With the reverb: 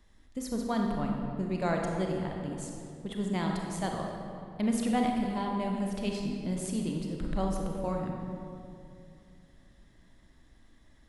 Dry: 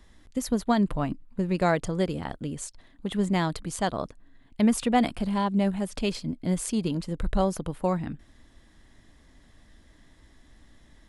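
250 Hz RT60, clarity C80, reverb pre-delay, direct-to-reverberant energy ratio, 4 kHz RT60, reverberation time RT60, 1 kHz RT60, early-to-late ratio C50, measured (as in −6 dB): 3.2 s, 3.0 dB, 29 ms, 0.5 dB, 1.5 s, 2.5 s, 2.3 s, 1.5 dB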